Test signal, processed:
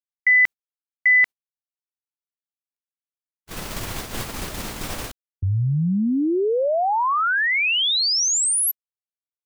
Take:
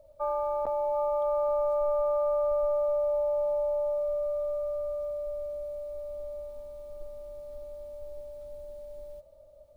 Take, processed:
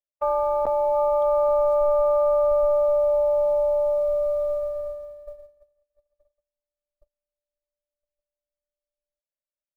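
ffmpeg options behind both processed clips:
-af "agate=range=0.00126:threshold=0.0251:ratio=16:detection=peak,volume=2.24"

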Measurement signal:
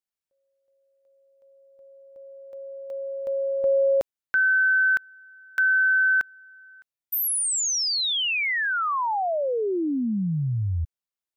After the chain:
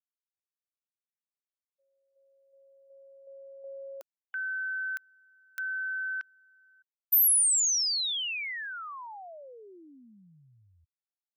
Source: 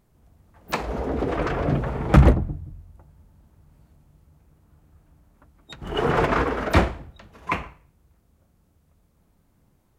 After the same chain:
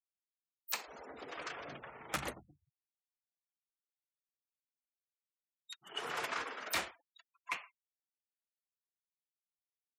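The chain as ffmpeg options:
-af "aderivative,afftfilt=real='re*gte(hypot(re,im),0.00251)':imag='im*gte(hypot(re,im),0.00251)':win_size=1024:overlap=0.75"

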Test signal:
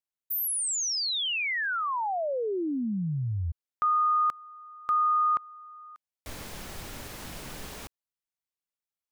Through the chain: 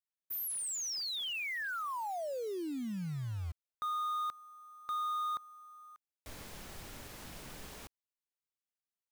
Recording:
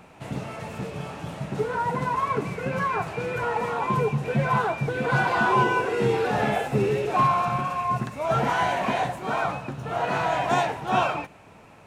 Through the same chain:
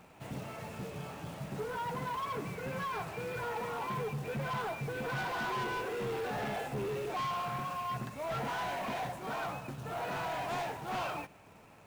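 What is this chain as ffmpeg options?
-af "acrusher=bits=3:mode=log:mix=0:aa=0.000001,asoftclip=type=tanh:threshold=0.0562,volume=0.422"

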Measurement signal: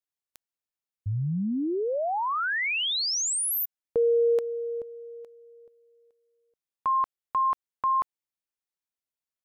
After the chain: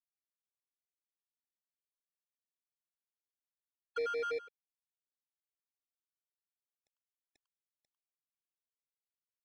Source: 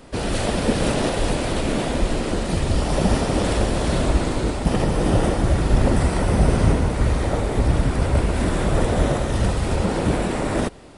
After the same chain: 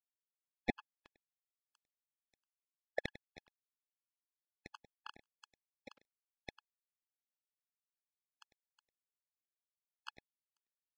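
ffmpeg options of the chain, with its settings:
-filter_complex "[0:a]afftfilt=real='re*gte(hypot(re,im),0.631)':imag='im*gte(hypot(re,im),0.631)':win_size=1024:overlap=0.75,equalizer=f=950:w=0.87:g=5,acompressor=threshold=0.0794:ratio=3:attack=19:release=130:knee=1:detection=rms,acrusher=bits=3:mode=log:mix=0:aa=0.000001,highpass=f=230:w=0.5412,highpass=f=230:w=1.3066,equalizer=f=430:t=q:w=4:g=3,equalizer=f=960:t=q:w=4:g=-9,equalizer=f=1900:t=q:w=4:g=9,lowpass=f=2700:w=0.5412,lowpass=f=2700:w=1.3066,acrusher=bits=2:mix=0:aa=0.5,asplit=2[s0][s1];[s1]adelay=99.13,volume=0.178,highshelf=f=4000:g=-2.23[s2];[s0][s2]amix=inputs=2:normalize=0,afftfilt=real='re*gt(sin(2*PI*6*pts/sr)*(1-2*mod(floor(b*sr/1024/850),2)),0)':imag='im*gt(sin(2*PI*6*pts/sr)*(1-2*mod(floor(b*sr/1024/850),2)),0)':win_size=1024:overlap=0.75,volume=1.41"

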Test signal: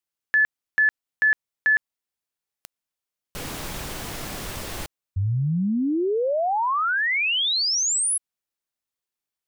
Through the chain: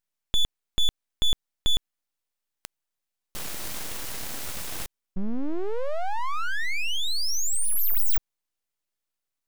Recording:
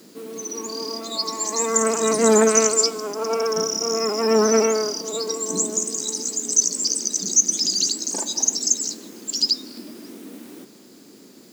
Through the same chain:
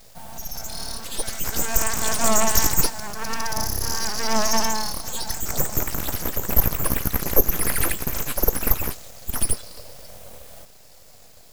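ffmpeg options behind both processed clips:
-af "highshelf=f=4900:g=6,aeval=exprs='abs(val(0))':c=same,volume=0.891"

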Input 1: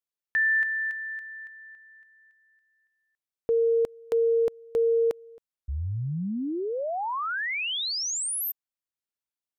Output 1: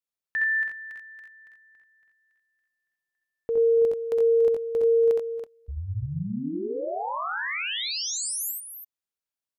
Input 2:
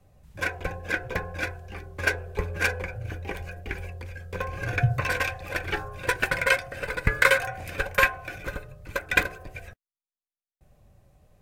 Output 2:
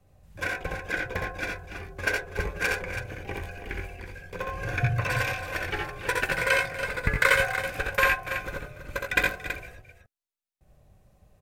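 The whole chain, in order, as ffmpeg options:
-af "aecho=1:1:65|85|285|328:0.631|0.531|0.188|0.335,volume=0.708"

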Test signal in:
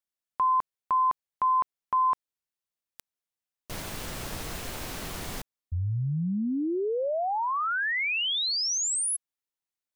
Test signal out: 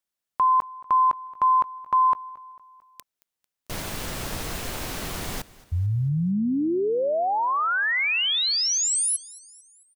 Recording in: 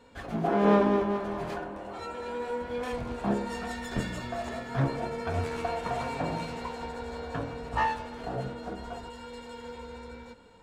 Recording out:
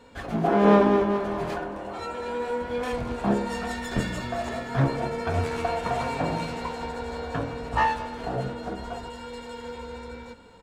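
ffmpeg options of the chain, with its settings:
-af "aecho=1:1:223|446|669|892:0.0891|0.0455|0.0232|0.0118,volume=1.68"

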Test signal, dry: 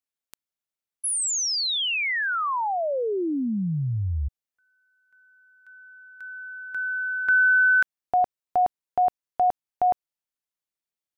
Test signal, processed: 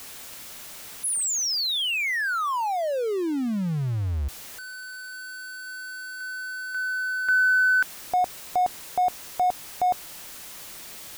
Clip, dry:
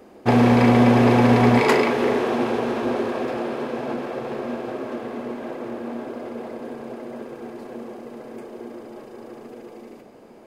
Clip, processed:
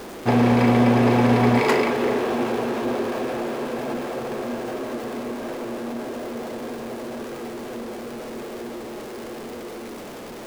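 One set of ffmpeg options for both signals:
-af "aeval=exprs='val(0)+0.5*0.0316*sgn(val(0))':c=same,volume=0.75"

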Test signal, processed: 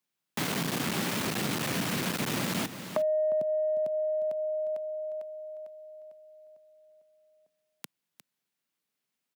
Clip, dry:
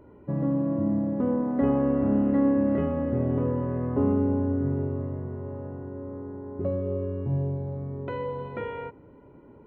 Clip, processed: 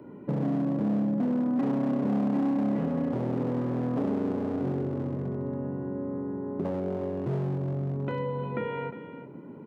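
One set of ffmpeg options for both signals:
-filter_complex "[0:a]bass=f=250:g=14,treble=f=4000:g=-9,acrossover=split=350|3000[s0][s1][s2];[s1]acompressor=threshold=0.0355:ratio=3[s3];[s0][s3][s2]amix=inputs=3:normalize=0,asplit=2[s4][s5];[s5]asoftclip=type=tanh:threshold=0.168,volume=0.299[s6];[s4][s6]amix=inputs=2:normalize=0,highshelf=f=2500:g=8.5,asplit=2[s7][s8];[s8]aecho=0:1:355:0.188[s9];[s7][s9]amix=inputs=2:normalize=0,volume=5.62,asoftclip=hard,volume=0.178,highpass=f=170:w=0.5412,highpass=f=170:w=1.3066,acompressor=threshold=0.0316:ratio=2"

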